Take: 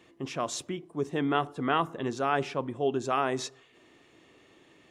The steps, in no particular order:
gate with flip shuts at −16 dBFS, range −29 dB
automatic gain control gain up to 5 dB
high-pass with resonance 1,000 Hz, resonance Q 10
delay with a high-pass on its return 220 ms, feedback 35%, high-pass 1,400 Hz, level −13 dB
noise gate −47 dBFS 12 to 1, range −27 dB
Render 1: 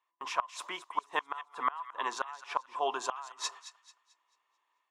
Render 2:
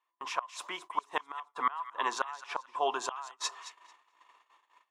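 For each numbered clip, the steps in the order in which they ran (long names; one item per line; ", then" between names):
high-pass with resonance, then noise gate, then automatic gain control, then gate with flip, then delay with a high-pass on its return
automatic gain control, then high-pass with resonance, then gate with flip, then delay with a high-pass on its return, then noise gate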